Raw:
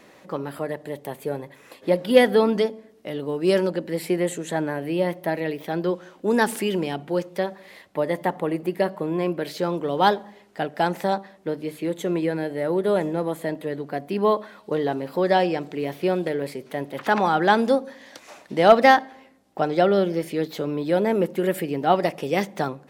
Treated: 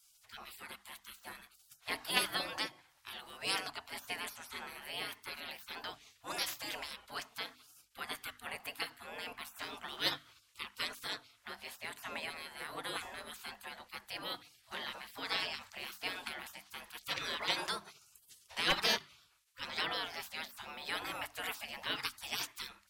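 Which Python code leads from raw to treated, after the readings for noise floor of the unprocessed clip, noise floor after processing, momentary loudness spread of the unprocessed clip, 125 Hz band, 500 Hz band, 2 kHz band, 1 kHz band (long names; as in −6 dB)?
−52 dBFS, −69 dBFS, 13 LU, −26.0 dB, −27.5 dB, −10.0 dB, −19.5 dB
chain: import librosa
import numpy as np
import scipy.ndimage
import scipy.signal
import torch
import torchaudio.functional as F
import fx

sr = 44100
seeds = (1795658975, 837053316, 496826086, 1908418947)

y = fx.spec_gate(x, sr, threshold_db=-25, keep='weak')
y = fx.hum_notches(y, sr, base_hz=50, count=6)
y = F.gain(torch.from_numpy(y), 1.0).numpy()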